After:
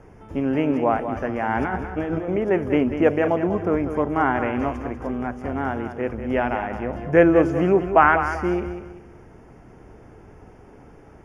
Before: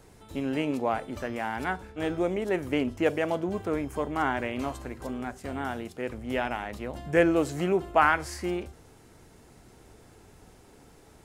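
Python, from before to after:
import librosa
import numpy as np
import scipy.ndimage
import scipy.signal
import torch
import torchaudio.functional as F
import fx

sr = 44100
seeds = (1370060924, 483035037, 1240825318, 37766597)

y = fx.over_compress(x, sr, threshold_db=-33.0, ratio=-1.0, at=(1.43, 2.32), fade=0.02)
y = scipy.signal.lfilter(np.full(11, 1.0 / 11), 1.0, y)
y = fx.echo_feedback(y, sr, ms=193, feedback_pct=34, wet_db=-9.5)
y = y * 10.0 ** (7.5 / 20.0)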